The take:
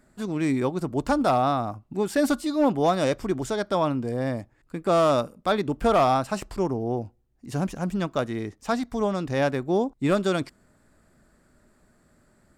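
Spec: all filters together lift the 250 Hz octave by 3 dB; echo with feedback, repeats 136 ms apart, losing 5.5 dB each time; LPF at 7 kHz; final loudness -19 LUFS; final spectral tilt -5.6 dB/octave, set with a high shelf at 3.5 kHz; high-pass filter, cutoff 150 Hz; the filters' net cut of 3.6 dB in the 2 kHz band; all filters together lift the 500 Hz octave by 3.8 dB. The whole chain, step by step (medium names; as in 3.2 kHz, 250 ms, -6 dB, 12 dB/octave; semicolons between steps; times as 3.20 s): high-pass 150 Hz; low-pass 7 kHz; peaking EQ 250 Hz +3 dB; peaking EQ 500 Hz +4.5 dB; peaking EQ 2 kHz -8 dB; treble shelf 3.5 kHz +8.5 dB; feedback delay 136 ms, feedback 53%, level -5.5 dB; trim +2 dB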